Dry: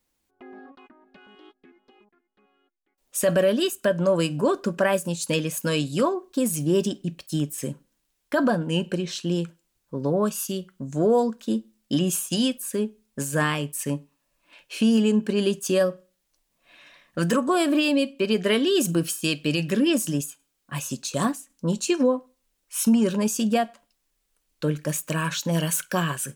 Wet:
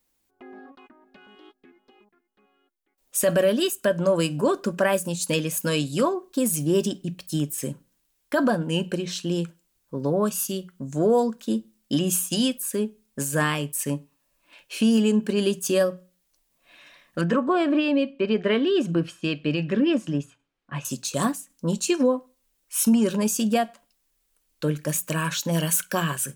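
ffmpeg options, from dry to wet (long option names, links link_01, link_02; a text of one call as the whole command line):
ffmpeg -i in.wav -filter_complex "[0:a]asettb=1/sr,asplit=3[link_01][link_02][link_03];[link_01]atrim=end=17.214[link_04];[link_02]atrim=start=17.21:end=20.85,asetpts=PTS-STARTPTS,afade=type=in:duration=0.004:curve=qsin,afade=type=out:start_time=3.636:duration=0.004:curve=qsin,lowpass=2500[link_05];[link_03]atrim=start=20.846[link_06];[link_04][link_05]acrossfade=duration=0.004:curve1=hsin:curve2=qsin[link_07];[link_07][link_06]acrossfade=duration=0.004:curve1=qsin:curve2=hsin,highshelf=frequency=9800:gain=6,bandreject=frequency=60:width_type=h:width=6,bandreject=frequency=120:width_type=h:width=6,bandreject=frequency=180:width_type=h:width=6" out.wav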